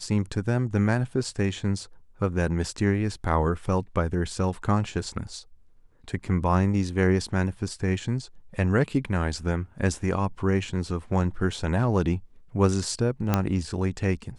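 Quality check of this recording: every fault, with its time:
13.34 pop -8 dBFS

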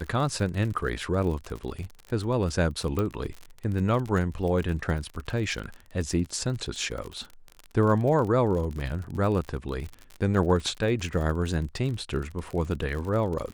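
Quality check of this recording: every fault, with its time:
crackle 43/s -32 dBFS
2.99 pop -16 dBFS

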